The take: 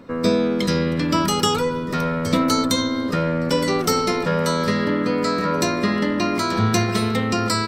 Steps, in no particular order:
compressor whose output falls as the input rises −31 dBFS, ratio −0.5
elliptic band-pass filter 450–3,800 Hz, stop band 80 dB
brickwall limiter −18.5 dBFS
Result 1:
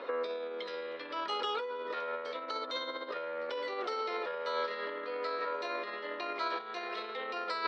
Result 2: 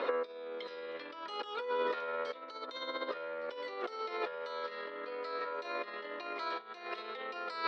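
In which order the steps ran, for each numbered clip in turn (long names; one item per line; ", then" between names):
brickwall limiter, then compressor whose output falls as the input rises, then elliptic band-pass filter
compressor whose output falls as the input rises, then brickwall limiter, then elliptic band-pass filter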